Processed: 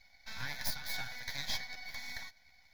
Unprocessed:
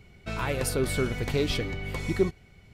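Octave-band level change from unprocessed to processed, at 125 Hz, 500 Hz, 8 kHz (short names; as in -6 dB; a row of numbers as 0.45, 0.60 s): -22.0, -29.5, -8.5 dB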